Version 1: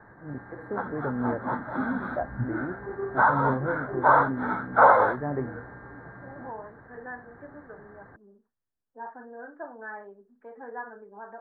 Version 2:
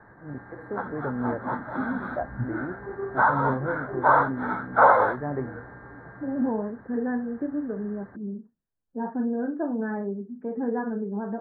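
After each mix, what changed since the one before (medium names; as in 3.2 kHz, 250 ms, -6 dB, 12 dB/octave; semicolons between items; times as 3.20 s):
second voice: remove high-pass 910 Hz 12 dB/octave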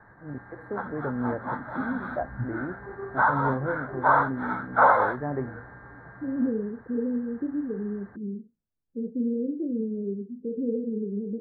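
second voice: add steep low-pass 530 Hz 96 dB/octave; background: add peaking EQ 350 Hz -5 dB 2 oct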